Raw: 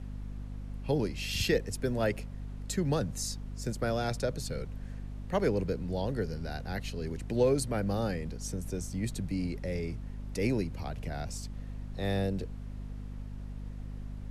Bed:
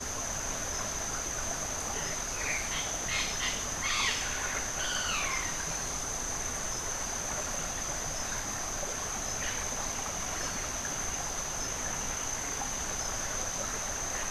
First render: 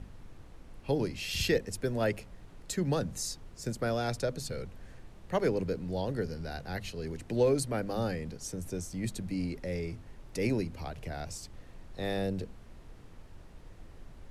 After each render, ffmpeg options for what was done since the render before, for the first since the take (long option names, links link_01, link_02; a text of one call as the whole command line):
ffmpeg -i in.wav -af "bandreject=frequency=50:width_type=h:width=6,bandreject=frequency=100:width_type=h:width=6,bandreject=frequency=150:width_type=h:width=6,bandreject=frequency=200:width_type=h:width=6,bandreject=frequency=250:width_type=h:width=6" out.wav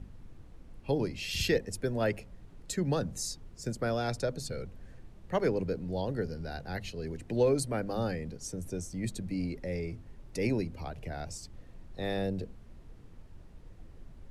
ffmpeg -i in.wav -af "afftdn=noise_reduction=6:noise_floor=-52" out.wav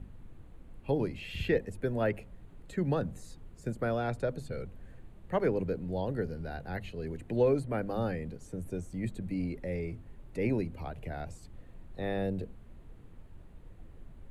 ffmpeg -i in.wav -filter_complex "[0:a]equalizer=frequency=5400:width=2.2:gain=-12,acrossover=split=2900[link_01][link_02];[link_02]acompressor=threshold=-55dB:ratio=4:attack=1:release=60[link_03];[link_01][link_03]amix=inputs=2:normalize=0" out.wav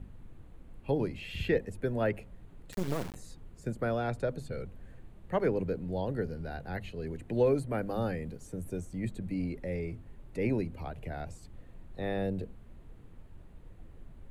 ffmpeg -i in.wav -filter_complex "[0:a]asettb=1/sr,asplit=3[link_01][link_02][link_03];[link_01]atrim=end=2.724[link_04];[link_02]atrim=start=2.72:end=3.15,asetpts=PTS-STARTPTS,afade=type=in:duration=0.004:curve=qsin,afade=type=out:start_time=0.426:duration=0.004:curve=qsin,acrusher=bits=4:dc=4:mix=0:aa=0.000001[link_05];[link_03]atrim=start=3.146[link_06];[link_04][link_05]acrossfade=duration=0.004:curve1=hsin:curve2=qsin[link_07];[link_07][link_06]acrossfade=duration=0.004:curve1=qsin:curve2=hsin,asettb=1/sr,asplit=3[link_08][link_09][link_10];[link_08]atrim=end=7.364[link_11];[link_09]atrim=start=7.36:end=8.85,asetpts=PTS-STARTPTS,afade=type=in:duration=0.004:curve=qsin,afade=type=out:start_time=1.486:duration=0.004:curve=qsin,highshelf=frequency=9600:gain=7.5[link_12];[link_10]atrim=start=8.846[link_13];[link_11][link_12]acrossfade=duration=0.004:curve1=hsin:curve2=qsin[link_14];[link_14][link_13]acrossfade=duration=0.004:curve1=qsin:curve2=hsin" out.wav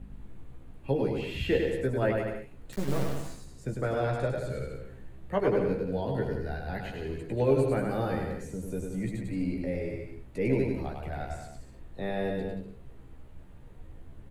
ffmpeg -i in.wav -filter_complex "[0:a]asplit=2[link_01][link_02];[link_02]adelay=15,volume=-4.5dB[link_03];[link_01][link_03]amix=inputs=2:normalize=0,aecho=1:1:100|180|244|295.2|336.2:0.631|0.398|0.251|0.158|0.1" out.wav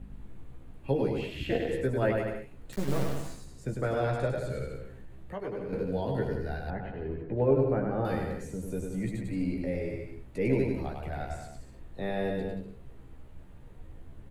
ffmpeg -i in.wav -filter_complex "[0:a]asplit=3[link_01][link_02][link_03];[link_01]afade=type=out:start_time=1.26:duration=0.02[link_04];[link_02]tremolo=f=220:d=0.824,afade=type=in:start_time=1.26:duration=0.02,afade=type=out:start_time=1.68:duration=0.02[link_05];[link_03]afade=type=in:start_time=1.68:duration=0.02[link_06];[link_04][link_05][link_06]amix=inputs=3:normalize=0,asettb=1/sr,asplit=3[link_07][link_08][link_09];[link_07]atrim=end=4.874[link_10];[link_08]atrim=start=4.87:end=5.73,asetpts=PTS-STARTPTS,afade=type=in:duration=0.004:curve=qsin,afade=type=out:start_time=0.856:duration=0.004:curve=qsin,acompressor=threshold=-41dB:ratio=2:attack=3.2:release=140:knee=1:detection=peak[link_11];[link_09]atrim=start=5.726[link_12];[link_10][link_11]acrossfade=duration=0.004:curve1=hsin:curve2=qsin[link_13];[link_13][link_12]acrossfade=duration=0.004:curve1=qsin:curve2=hsin,asettb=1/sr,asplit=3[link_14][link_15][link_16];[link_14]atrim=end=6.704[link_17];[link_15]atrim=start=6.7:end=8.05,asetpts=PTS-STARTPTS,afade=type=in:duration=0.004:curve=qsin,afade=type=out:start_time=1.346:duration=0.004:curve=qsin,lowpass=1400[link_18];[link_16]atrim=start=8.046[link_19];[link_17][link_18]acrossfade=duration=0.004:curve1=hsin:curve2=qsin[link_20];[link_20][link_19]acrossfade=duration=0.004:curve1=qsin:curve2=hsin" out.wav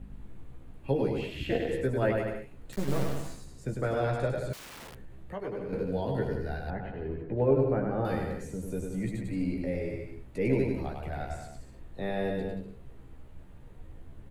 ffmpeg -i in.wav -filter_complex "[0:a]asettb=1/sr,asplit=3[link_01][link_02][link_03];[link_01]atrim=end=4.534[link_04];[link_02]atrim=start=4.53:end=4.95,asetpts=PTS-STARTPTS,afade=type=in:duration=0.004:curve=qsin,afade=type=out:start_time=0.416:duration=0.004:curve=qsin,aeval=exprs='(mod(119*val(0)+1,2)-1)/119':channel_layout=same[link_05];[link_03]atrim=start=4.946[link_06];[link_04][link_05]acrossfade=duration=0.004:curve1=hsin:curve2=qsin[link_07];[link_07][link_06]acrossfade=duration=0.004:curve1=qsin:curve2=hsin" out.wav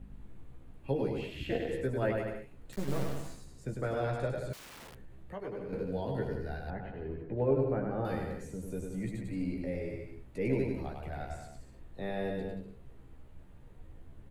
ffmpeg -i in.wav -af "volume=-4dB" out.wav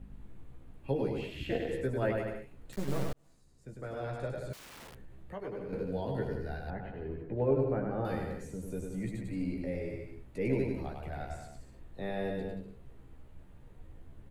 ffmpeg -i in.wav -filter_complex "[0:a]asplit=2[link_01][link_02];[link_01]atrim=end=3.13,asetpts=PTS-STARTPTS,afade=type=out:start_time=3.126:duration=0.004:curve=hsin[link_03];[link_02]atrim=start=3.13,asetpts=PTS-STARTPTS,afade=type=in:duration=1.68[link_04];[link_03][link_04]concat=n=2:v=0:a=1" out.wav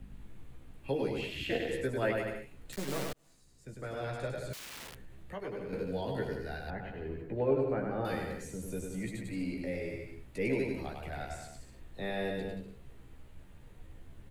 ffmpeg -i in.wav -filter_complex "[0:a]acrossover=split=200|1700[link_01][link_02][link_03];[link_01]alimiter=level_in=12dB:limit=-24dB:level=0:latency=1:release=420,volume=-12dB[link_04];[link_03]acontrast=70[link_05];[link_04][link_02][link_05]amix=inputs=3:normalize=0" out.wav